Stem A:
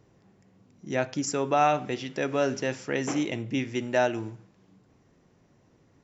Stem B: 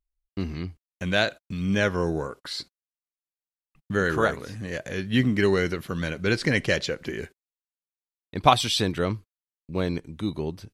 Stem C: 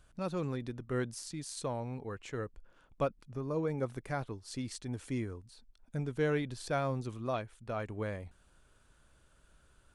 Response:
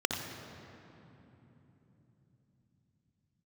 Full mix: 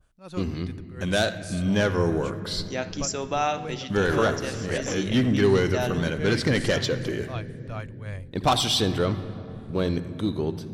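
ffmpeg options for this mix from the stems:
-filter_complex "[0:a]equalizer=frequency=4500:width=0.47:gain=9,adelay=1800,volume=-5.5dB,asplit=2[link_01][link_02];[link_02]volume=-19.5dB[link_03];[1:a]asoftclip=type=tanh:threshold=-17dB,volume=1dB,asplit=3[link_04][link_05][link_06];[link_05]volume=-15.5dB[link_07];[2:a]asubboost=boost=9:cutoff=79,tremolo=f=2.7:d=0.84,adynamicequalizer=threshold=0.002:dfrequency=1600:dqfactor=0.7:tfrequency=1600:tqfactor=0.7:attack=5:release=100:ratio=0.375:range=3.5:mode=boostabove:tftype=highshelf,volume=0dB[link_08];[link_06]apad=whole_len=345448[link_09];[link_01][link_09]sidechaincompress=threshold=-25dB:ratio=8:attack=16:release=503[link_10];[3:a]atrim=start_sample=2205[link_11];[link_03][link_07]amix=inputs=2:normalize=0[link_12];[link_12][link_11]afir=irnorm=-1:irlink=0[link_13];[link_10][link_04][link_08][link_13]amix=inputs=4:normalize=0"

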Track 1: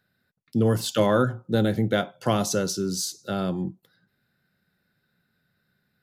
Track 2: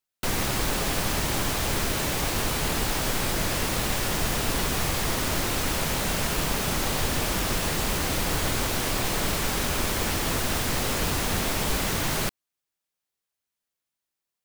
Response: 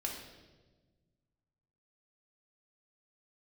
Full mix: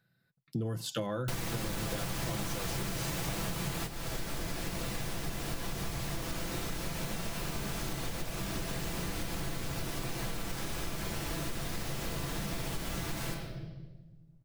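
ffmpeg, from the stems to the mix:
-filter_complex "[0:a]volume=-5dB,asplit=2[link_01][link_02];[1:a]adelay=1050,volume=1.5dB,asplit=2[link_03][link_04];[link_04]volume=-12.5dB[link_05];[link_02]apad=whole_len=683390[link_06];[link_03][link_06]sidechaingate=range=-33dB:threshold=-55dB:ratio=16:detection=peak[link_07];[2:a]atrim=start_sample=2205[link_08];[link_05][link_08]afir=irnorm=-1:irlink=0[link_09];[link_01][link_07][link_09]amix=inputs=3:normalize=0,equalizer=frequency=130:width_type=o:width=0.6:gain=9,aecho=1:1:6:0.37,acompressor=threshold=-31dB:ratio=16"

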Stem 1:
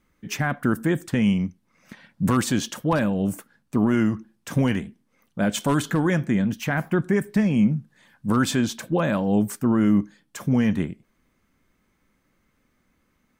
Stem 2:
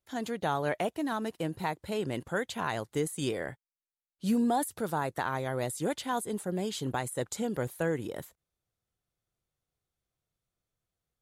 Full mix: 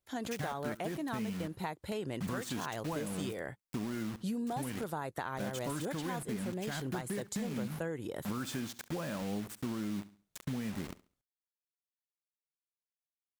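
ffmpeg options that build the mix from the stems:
ffmpeg -i stem1.wav -i stem2.wav -filter_complex "[0:a]acrusher=bits=4:mix=0:aa=0.000001,volume=-10dB,asplit=2[link_01][link_02];[link_02]volume=-19.5dB[link_03];[1:a]volume=-0.5dB[link_04];[link_03]aecho=0:1:69|138|207|276:1|0.26|0.0676|0.0176[link_05];[link_01][link_04][link_05]amix=inputs=3:normalize=0,acompressor=threshold=-34dB:ratio=6" out.wav

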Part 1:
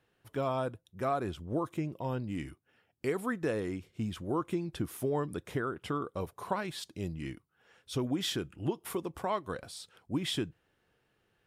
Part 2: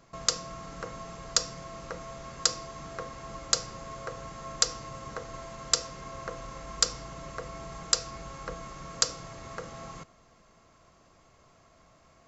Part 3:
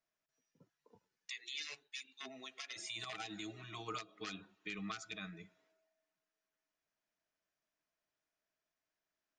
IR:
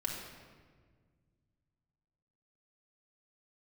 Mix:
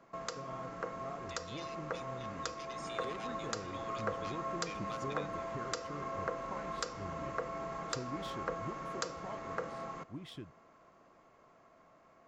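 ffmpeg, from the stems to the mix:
-filter_complex "[0:a]lowshelf=frequency=170:gain=8.5,adynamicsmooth=sensitivity=6.5:basefreq=4300,volume=-17dB[link_01];[1:a]acrossover=split=180 2300:gain=0.178 1 0.2[link_02][link_03][link_04];[link_02][link_03][link_04]amix=inputs=3:normalize=0,alimiter=limit=-23dB:level=0:latency=1:release=270,volume=0dB[link_05];[2:a]volume=-7dB[link_06];[link_01][link_05][link_06]amix=inputs=3:normalize=0,dynaudnorm=framelen=520:gausssize=11:maxgain=3dB"

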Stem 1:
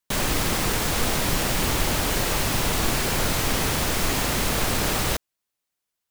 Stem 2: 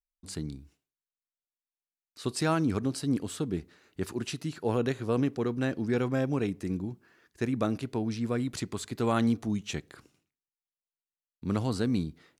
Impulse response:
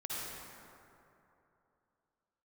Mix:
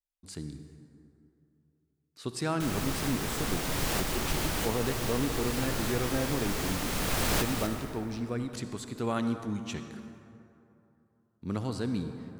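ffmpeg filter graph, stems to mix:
-filter_complex "[0:a]adelay=2500,volume=-4dB,asplit=2[link_01][link_02];[link_02]volume=-12dB[link_03];[1:a]volume=-5.5dB,asplit=3[link_04][link_05][link_06];[link_05]volume=-8dB[link_07];[link_06]apad=whole_len=379675[link_08];[link_01][link_08]sidechaincompress=threshold=-42dB:ratio=8:attack=33:release=781[link_09];[2:a]atrim=start_sample=2205[link_10];[link_03][link_07]amix=inputs=2:normalize=0[link_11];[link_11][link_10]afir=irnorm=-1:irlink=0[link_12];[link_09][link_04][link_12]amix=inputs=3:normalize=0"

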